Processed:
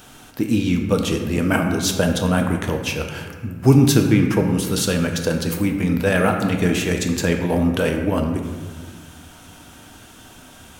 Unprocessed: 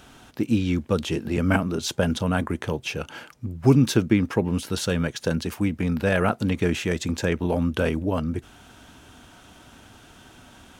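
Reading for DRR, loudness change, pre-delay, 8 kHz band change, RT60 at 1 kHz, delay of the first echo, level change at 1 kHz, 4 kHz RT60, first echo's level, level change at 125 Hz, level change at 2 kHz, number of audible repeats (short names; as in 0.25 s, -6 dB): 3.0 dB, +4.5 dB, 4 ms, +8.5 dB, 1.5 s, none, +4.5 dB, 0.95 s, none, +5.0 dB, +4.5 dB, none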